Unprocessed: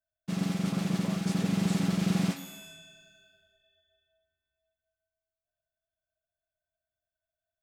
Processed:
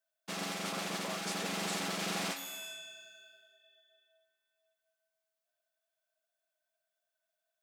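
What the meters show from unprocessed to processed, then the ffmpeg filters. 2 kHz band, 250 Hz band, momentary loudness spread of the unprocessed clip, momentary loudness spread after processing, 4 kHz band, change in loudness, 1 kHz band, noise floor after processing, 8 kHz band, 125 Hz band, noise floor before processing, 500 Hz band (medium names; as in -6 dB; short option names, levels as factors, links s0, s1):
+3.0 dB, -14.5 dB, 14 LU, 14 LU, +3.0 dB, -7.0 dB, +2.5 dB, under -85 dBFS, +3.0 dB, -17.0 dB, under -85 dBFS, -1.5 dB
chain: -filter_complex "[0:a]highpass=550,asplit=2[s0][s1];[s1]alimiter=level_in=3.35:limit=0.0631:level=0:latency=1:release=380,volume=0.299,volume=0.75[s2];[s0][s2]amix=inputs=2:normalize=0"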